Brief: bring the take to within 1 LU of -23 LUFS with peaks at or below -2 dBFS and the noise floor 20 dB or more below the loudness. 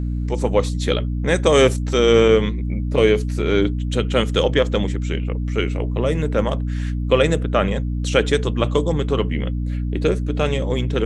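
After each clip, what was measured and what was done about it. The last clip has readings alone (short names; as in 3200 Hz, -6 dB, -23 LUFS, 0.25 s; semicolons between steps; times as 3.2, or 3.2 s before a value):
hum 60 Hz; harmonics up to 300 Hz; hum level -20 dBFS; loudness -19.5 LUFS; peak -2.0 dBFS; loudness target -23.0 LUFS
-> notches 60/120/180/240/300 Hz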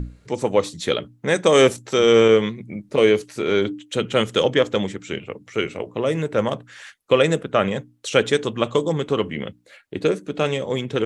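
hum none; loudness -20.5 LUFS; peak -2.0 dBFS; loudness target -23.0 LUFS
-> gain -2.5 dB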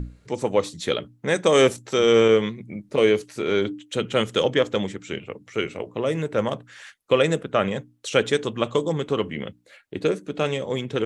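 loudness -23.0 LUFS; peak -4.5 dBFS; noise floor -59 dBFS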